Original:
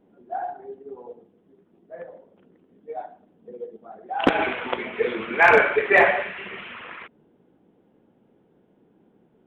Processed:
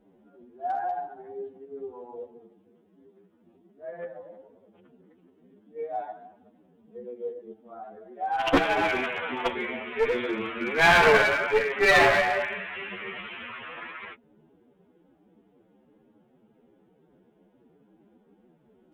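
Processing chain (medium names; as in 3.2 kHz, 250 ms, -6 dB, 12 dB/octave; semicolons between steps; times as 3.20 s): time stretch by phase-locked vocoder 2×; one-sided clip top -23 dBFS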